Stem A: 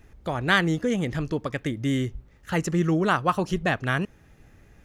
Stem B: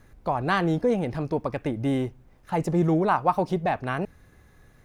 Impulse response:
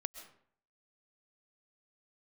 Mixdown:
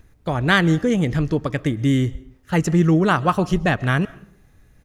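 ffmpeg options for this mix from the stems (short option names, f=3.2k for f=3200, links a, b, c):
-filter_complex "[0:a]volume=0.5dB,asplit=2[a][b];[b]volume=-6.5dB[c];[1:a]highshelf=f=2.4k:g=10,acompressor=threshold=-28dB:ratio=6,adelay=7.1,volume=-9.5dB,asplit=2[d][e];[e]apad=whole_len=213740[f];[a][f]sidechaingate=range=-33dB:threshold=-50dB:ratio=16:detection=peak[g];[2:a]atrim=start_sample=2205[h];[c][h]afir=irnorm=-1:irlink=0[i];[g][d][i]amix=inputs=3:normalize=0,lowshelf=f=280:g=5.5"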